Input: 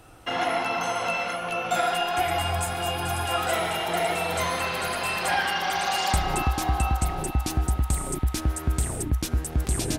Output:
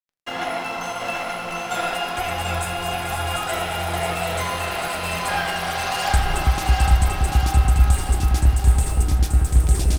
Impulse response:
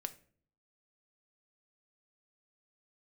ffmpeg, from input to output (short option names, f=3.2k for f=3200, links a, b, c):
-filter_complex "[0:a]aeval=exprs='sgn(val(0))*max(abs(val(0))-0.01,0)':c=same,asubboost=boost=3:cutoff=110,aecho=1:1:740|1406|2005|2545|3030:0.631|0.398|0.251|0.158|0.1[a];[1:a]atrim=start_sample=2205[b];[a][b]afir=irnorm=-1:irlink=0,volume=3dB"